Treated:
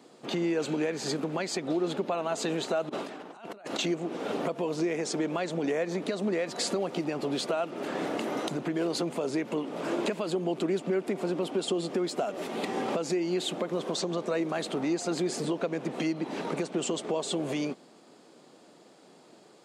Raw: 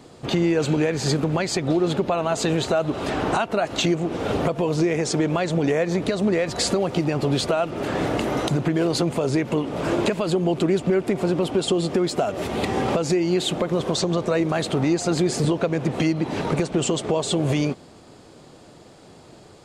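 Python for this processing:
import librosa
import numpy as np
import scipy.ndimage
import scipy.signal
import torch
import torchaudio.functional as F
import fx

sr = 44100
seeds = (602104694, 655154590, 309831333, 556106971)

y = fx.over_compress(x, sr, threshold_db=-30.0, ratio=-0.5, at=(2.89, 3.79))
y = scipy.signal.sosfilt(scipy.signal.butter(4, 190.0, 'highpass', fs=sr, output='sos'), y)
y = y * librosa.db_to_amplitude(-7.5)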